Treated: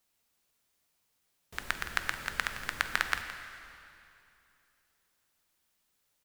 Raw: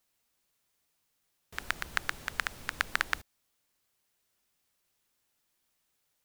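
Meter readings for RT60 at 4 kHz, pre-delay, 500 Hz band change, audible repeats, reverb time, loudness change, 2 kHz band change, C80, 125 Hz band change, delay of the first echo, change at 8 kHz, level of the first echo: 2.4 s, 6 ms, +1.0 dB, 1, 2.7 s, +0.5 dB, +1.0 dB, 8.0 dB, +1.0 dB, 167 ms, +1.0 dB, -13.5 dB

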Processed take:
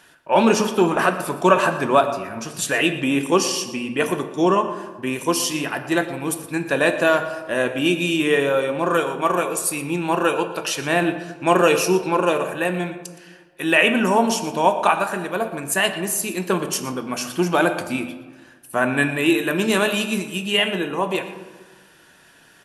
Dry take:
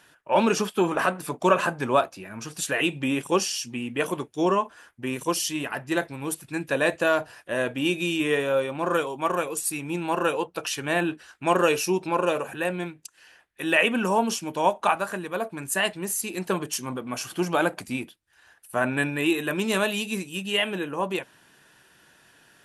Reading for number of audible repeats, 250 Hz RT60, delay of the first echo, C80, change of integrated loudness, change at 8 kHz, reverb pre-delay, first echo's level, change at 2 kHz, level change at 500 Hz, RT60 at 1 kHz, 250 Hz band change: 1, 1.6 s, 118 ms, 11.0 dB, +5.5 dB, +5.0 dB, 3 ms, -15.0 dB, +5.0 dB, +5.5 dB, 1.3 s, +6.0 dB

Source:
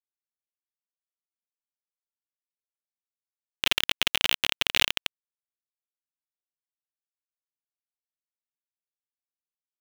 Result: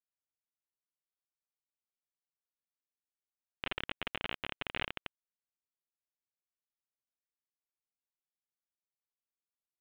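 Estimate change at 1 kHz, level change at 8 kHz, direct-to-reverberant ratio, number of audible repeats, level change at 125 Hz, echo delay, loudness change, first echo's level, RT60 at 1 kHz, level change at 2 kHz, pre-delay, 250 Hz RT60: -7.0 dB, under -35 dB, no reverb, no echo, -4.5 dB, no echo, -15.0 dB, no echo, no reverb, -12.0 dB, no reverb, no reverb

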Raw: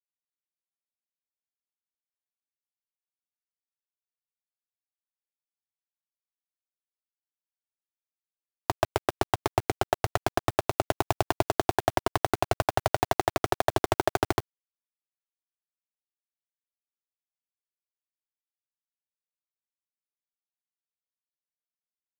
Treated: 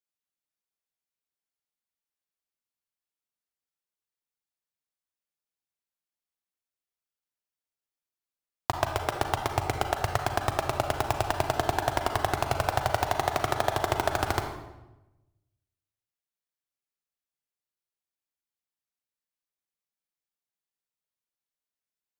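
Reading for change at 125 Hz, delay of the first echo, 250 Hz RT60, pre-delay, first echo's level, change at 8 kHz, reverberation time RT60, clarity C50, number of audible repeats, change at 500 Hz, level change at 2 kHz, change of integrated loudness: +1.0 dB, no echo, 1.2 s, 35 ms, no echo, +0.5 dB, 1.0 s, 5.5 dB, no echo, -2.0 dB, +1.0 dB, -0.5 dB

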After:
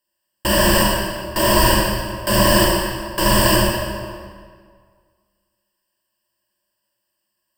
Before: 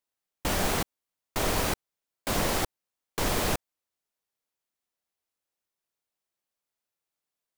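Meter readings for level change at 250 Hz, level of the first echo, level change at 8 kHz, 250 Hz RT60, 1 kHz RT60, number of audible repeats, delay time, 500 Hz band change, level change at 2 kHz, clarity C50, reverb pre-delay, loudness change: +15.0 dB, no echo, +11.5 dB, 1.9 s, 1.9 s, no echo, no echo, +14.0 dB, +13.5 dB, -1.5 dB, 31 ms, +13.0 dB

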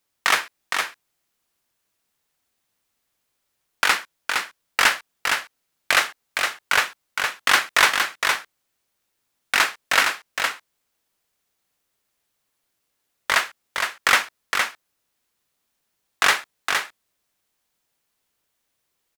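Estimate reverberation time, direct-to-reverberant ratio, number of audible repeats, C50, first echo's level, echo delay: no reverb, no reverb, 1, no reverb, -5.0 dB, 463 ms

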